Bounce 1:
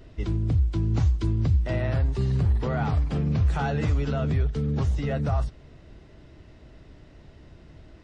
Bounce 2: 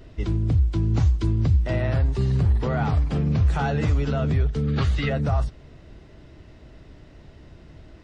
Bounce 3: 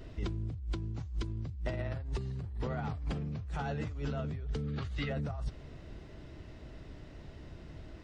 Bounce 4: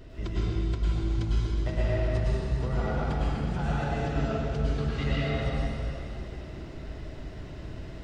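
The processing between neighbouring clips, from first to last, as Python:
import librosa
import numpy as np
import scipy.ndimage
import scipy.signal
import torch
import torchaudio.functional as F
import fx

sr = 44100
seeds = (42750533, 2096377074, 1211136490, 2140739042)

y1 = fx.spec_box(x, sr, start_s=4.67, length_s=0.42, low_hz=1100.0, high_hz=4900.0, gain_db=10)
y1 = y1 * librosa.db_to_amplitude(2.5)
y2 = fx.over_compress(y1, sr, threshold_db=-28.0, ratio=-1.0)
y2 = y2 * librosa.db_to_amplitude(-8.5)
y3 = fx.rev_plate(y2, sr, seeds[0], rt60_s=3.1, hf_ratio=0.9, predelay_ms=90, drr_db=-8.0)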